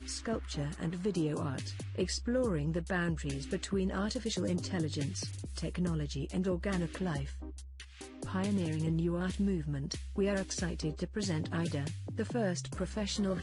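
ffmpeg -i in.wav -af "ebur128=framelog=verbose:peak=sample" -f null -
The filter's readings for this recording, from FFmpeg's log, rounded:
Integrated loudness:
  I:         -35.0 LUFS
  Threshold: -45.2 LUFS
Loudness range:
  LRA:         1.9 LU
  Threshold: -55.2 LUFS
  LRA low:   -36.2 LUFS
  LRA high:  -34.3 LUFS
Sample peak:
  Peak:      -20.6 dBFS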